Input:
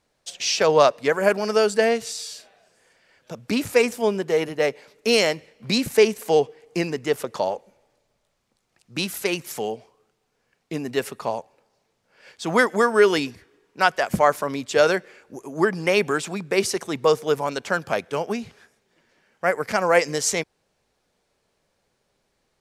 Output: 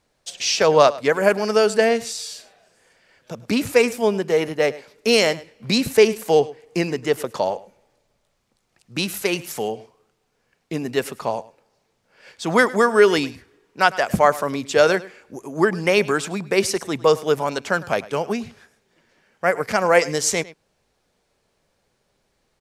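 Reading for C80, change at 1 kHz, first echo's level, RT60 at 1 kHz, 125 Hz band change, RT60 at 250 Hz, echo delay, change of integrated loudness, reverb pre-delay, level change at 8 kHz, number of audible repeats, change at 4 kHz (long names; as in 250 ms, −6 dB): no reverb audible, +2.0 dB, −19.0 dB, no reverb audible, +3.0 dB, no reverb audible, 104 ms, +2.0 dB, no reverb audible, +2.0 dB, 1, +2.0 dB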